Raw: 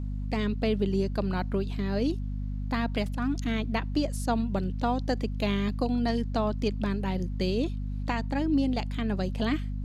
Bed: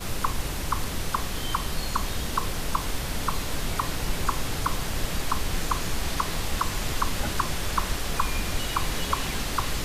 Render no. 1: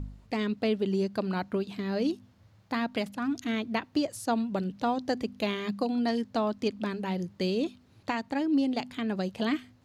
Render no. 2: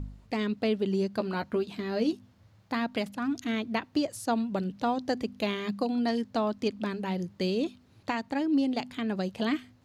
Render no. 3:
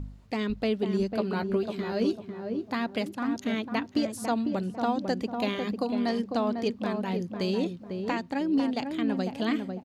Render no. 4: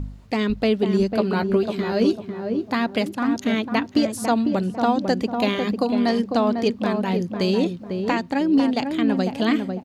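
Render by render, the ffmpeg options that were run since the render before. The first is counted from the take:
ffmpeg -i in.wav -af "bandreject=frequency=50:width_type=h:width=4,bandreject=frequency=100:width_type=h:width=4,bandreject=frequency=150:width_type=h:width=4,bandreject=frequency=200:width_type=h:width=4,bandreject=frequency=250:width_type=h:width=4" out.wav
ffmpeg -i in.wav -filter_complex "[0:a]asettb=1/sr,asplit=3[link_01][link_02][link_03];[link_01]atrim=end=1.174[link_04];[link_02]atrim=start=1.17:end=2.13,asetpts=PTS-STARTPTS,afade=type=in:duration=0.004:curve=qsin,afade=type=out:start_time=0.956:duration=0.004:curve=qsin,asplit=2[link_05][link_06];[link_06]adelay=13,volume=-7.5dB[link_07];[link_05][link_07]amix=inputs=2:normalize=0,atrim=end_sample=42336[link_08];[link_03]atrim=start=2.126[link_09];[link_04][link_08]acrossfade=duration=0.004:curve1=hsin:curve2=qsin[link_10];[link_10][link_09]acrossfade=duration=0.004:curve1=qsin:curve2=hsin" out.wav
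ffmpeg -i in.wav -filter_complex "[0:a]asplit=2[link_01][link_02];[link_02]adelay=499,lowpass=frequency=1000:poles=1,volume=-4.5dB,asplit=2[link_03][link_04];[link_04]adelay=499,lowpass=frequency=1000:poles=1,volume=0.39,asplit=2[link_05][link_06];[link_06]adelay=499,lowpass=frequency=1000:poles=1,volume=0.39,asplit=2[link_07][link_08];[link_08]adelay=499,lowpass=frequency=1000:poles=1,volume=0.39,asplit=2[link_09][link_10];[link_10]adelay=499,lowpass=frequency=1000:poles=1,volume=0.39[link_11];[link_01][link_03][link_05][link_07][link_09][link_11]amix=inputs=6:normalize=0" out.wav
ffmpeg -i in.wav -af "volume=7.5dB" out.wav

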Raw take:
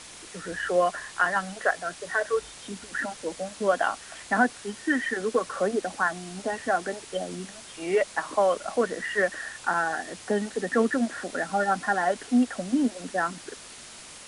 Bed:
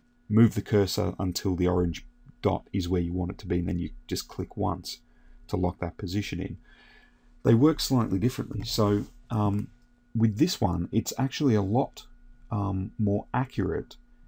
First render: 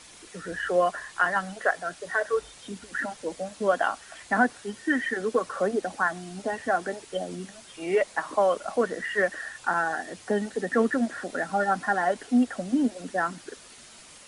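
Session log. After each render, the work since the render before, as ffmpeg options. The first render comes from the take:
ffmpeg -i in.wav -af "afftdn=noise_reduction=6:noise_floor=-45" out.wav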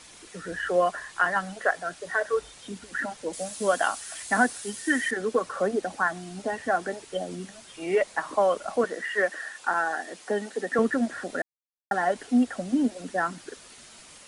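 ffmpeg -i in.wav -filter_complex "[0:a]asettb=1/sr,asplit=3[link_01][link_02][link_03];[link_01]atrim=end=3.334[link_04];[link_02]atrim=start=3.33:end=5.11,asetpts=PTS-STARTPTS,afade=type=in:duration=0.004:curve=qsin,afade=type=out:start_time=1.776:duration=0.004:curve=qsin,aemphasis=mode=production:type=75fm[link_05];[link_03]atrim=start=5.106[link_06];[link_04][link_05]acrossfade=duration=0.004:curve1=hsin:curve2=qsin[link_07];[link_07][link_06]acrossfade=duration=0.004:curve1=qsin:curve2=hsin,asettb=1/sr,asplit=3[link_08][link_09][link_10];[link_08]atrim=end=8.844[link_11];[link_09]atrim=start=8.84:end=10.79,asetpts=PTS-STARTPTS,afade=type=in:duration=0.004:curve=qsin,afade=type=out:start_time=1.946:duration=0.004:curve=qsin,highpass=280[link_12];[link_10]atrim=start=10.786[link_13];[link_11][link_12]acrossfade=duration=0.004:curve1=hsin:curve2=qsin[link_14];[link_14][link_13]acrossfade=duration=0.004:curve1=qsin:curve2=hsin,asplit=3[link_15][link_16][link_17];[link_15]atrim=end=11.42,asetpts=PTS-STARTPTS,afade=type=out:start_time=11.416:duration=0.004:curve=hsin[link_18];[link_16]atrim=start=11.42:end=11.91,asetpts=PTS-STARTPTS,volume=0[link_19];[link_17]atrim=start=11.91,asetpts=PTS-STARTPTS,afade=type=in:duration=0.004:curve=hsin[link_20];[link_18][link_19][link_20]concat=n=3:v=0:a=1" out.wav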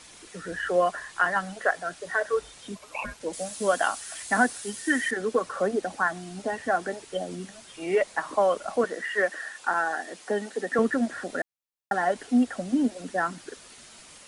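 ffmpeg -i in.wav -filter_complex "[0:a]asplit=3[link_01][link_02][link_03];[link_01]afade=type=out:start_time=2.75:duration=0.02[link_04];[link_02]aeval=exprs='val(0)*sin(2*PI*840*n/s)':channel_layout=same,afade=type=in:start_time=2.75:duration=0.02,afade=type=out:start_time=3.19:duration=0.02[link_05];[link_03]afade=type=in:start_time=3.19:duration=0.02[link_06];[link_04][link_05][link_06]amix=inputs=3:normalize=0" out.wav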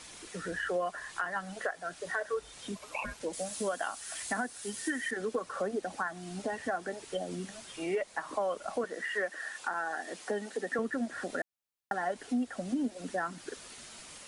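ffmpeg -i in.wav -af "alimiter=limit=-15dB:level=0:latency=1:release=468,acompressor=threshold=-35dB:ratio=2" out.wav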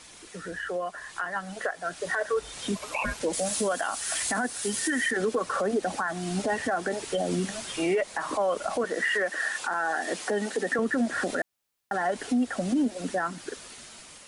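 ffmpeg -i in.wav -af "dynaudnorm=framelen=800:gausssize=5:maxgain=11dB,alimiter=limit=-18.5dB:level=0:latency=1:release=37" out.wav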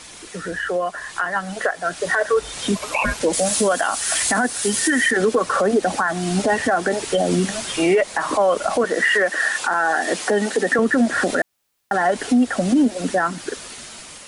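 ffmpeg -i in.wav -af "volume=9dB" out.wav

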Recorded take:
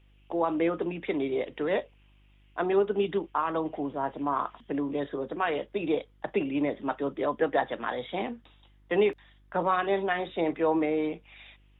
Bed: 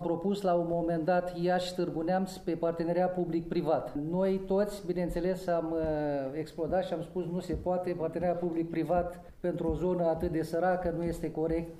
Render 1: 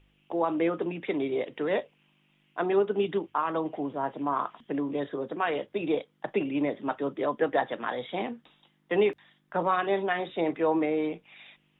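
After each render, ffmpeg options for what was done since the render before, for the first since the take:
ffmpeg -i in.wav -af "bandreject=frequency=50:width_type=h:width=4,bandreject=frequency=100:width_type=h:width=4" out.wav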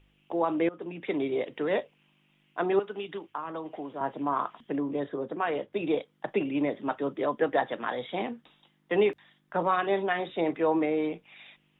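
ffmpeg -i in.wav -filter_complex "[0:a]asettb=1/sr,asplit=3[link_01][link_02][link_03];[link_01]atrim=end=2.794[link_04];[link_02]atrim=start=2.79:end=4.01,asetpts=PTS-STARTPTS,afade=type=in:duration=0.004:curve=qsin,afade=type=out:start_time=1.216:duration=0.004:curve=qsin,acrossover=split=300|970[link_05][link_06][link_07];[link_05]acompressor=threshold=-47dB:ratio=4[link_08];[link_06]acompressor=threshold=-38dB:ratio=4[link_09];[link_07]acompressor=threshold=-40dB:ratio=4[link_10];[link_08][link_09][link_10]amix=inputs=3:normalize=0[link_11];[link_03]atrim=start=4.006[link_12];[link_04][link_11]acrossfade=duration=0.004:curve1=hsin:curve2=qsin[link_13];[link_13][link_12]acrossfade=duration=0.004:curve1=qsin:curve2=hsin,asettb=1/sr,asplit=3[link_14][link_15][link_16];[link_14]atrim=end=4.764[link_17];[link_15]atrim=start=4.76:end=5.73,asetpts=PTS-STARTPTS,afade=type=in:duration=0.004:curve=qsin,afade=type=out:start_time=0.966:duration=0.004:curve=qsin,highshelf=frequency=2500:gain=-7.5[link_18];[link_16]atrim=start=5.726[link_19];[link_17][link_18]acrossfade=duration=0.004:curve1=hsin:curve2=qsin[link_20];[link_20][link_19]acrossfade=duration=0.004:curve1=qsin:curve2=hsin,asplit=2[link_21][link_22];[link_21]atrim=end=0.69,asetpts=PTS-STARTPTS,afade=type=out:start_time=0.686:duration=0.004:curve=hsin:silence=0.125893[link_23];[link_22]atrim=start=0.69,asetpts=PTS-STARTPTS,afade=type=in:duration=0.45:silence=0.125893[link_24];[link_23][link_24]concat=n=2:v=0:a=1" out.wav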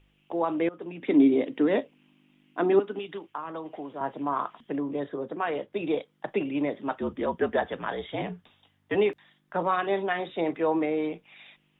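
ffmpeg -i in.wav -filter_complex "[0:a]asettb=1/sr,asplit=3[link_01][link_02][link_03];[link_01]atrim=end=1.024[link_04];[link_02]atrim=start=1.02:end=2.99,asetpts=PTS-STARTPTS,afade=type=in:duration=0.004:curve=qsin,afade=type=out:start_time=1.966:duration=0.004:curve=qsin,equalizer=frequency=270:width_type=o:width=0.58:gain=15[link_05];[link_03]atrim=start=2.986[link_06];[link_04][link_05]acrossfade=duration=0.004:curve1=hsin:curve2=qsin[link_07];[link_07][link_06]acrossfade=duration=0.004:curve1=qsin:curve2=hsin,asettb=1/sr,asplit=3[link_08][link_09][link_10];[link_08]atrim=end=7.004[link_11];[link_09]atrim=start=7:end=8.95,asetpts=PTS-STARTPTS,afade=type=in:duration=0.004:curve=qsin,afade=type=out:start_time=1.946:duration=0.004:curve=qsin,afreqshift=-56[link_12];[link_10]atrim=start=8.946[link_13];[link_11][link_12]acrossfade=duration=0.004:curve1=hsin:curve2=qsin[link_14];[link_14][link_13]acrossfade=duration=0.004:curve1=qsin:curve2=hsin" out.wav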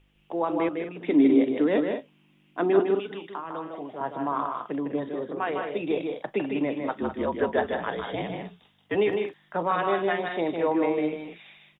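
ffmpeg -i in.wav -af "aecho=1:1:154.5|201.2:0.562|0.316" out.wav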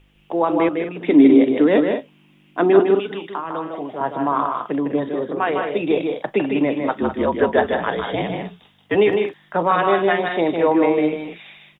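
ffmpeg -i in.wav -af "volume=8dB,alimiter=limit=-2dB:level=0:latency=1" out.wav

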